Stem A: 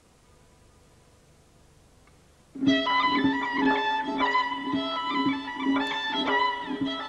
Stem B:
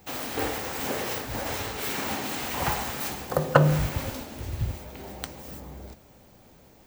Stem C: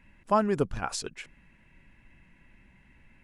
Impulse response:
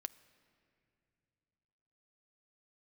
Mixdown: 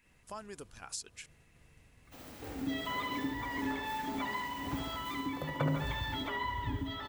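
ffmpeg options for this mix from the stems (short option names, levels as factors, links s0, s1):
-filter_complex "[0:a]agate=range=0.0224:threshold=0.00251:ratio=3:detection=peak,equalizer=f=6000:t=o:w=2.1:g=-7.5,volume=1.12,asplit=2[s0][s1];[s1]volume=0.0841[s2];[1:a]lowshelf=f=270:g=10.5,adelay=2050,volume=0.1,asplit=2[s3][s4];[s4]volume=0.531[s5];[2:a]alimiter=limit=0.0891:level=0:latency=1:release=480,bass=f=250:g=-12,treble=f=4000:g=11,volume=0.531[s6];[s0][s6]amix=inputs=2:normalize=0,equalizer=f=580:t=o:w=2.8:g=-7.5,acompressor=threshold=0.0112:ratio=2.5,volume=1[s7];[s2][s5]amix=inputs=2:normalize=0,aecho=0:1:71|142|213|284|355|426|497|568|639:1|0.58|0.336|0.195|0.113|0.0656|0.0381|0.0221|0.0128[s8];[s3][s7][s8]amix=inputs=3:normalize=0"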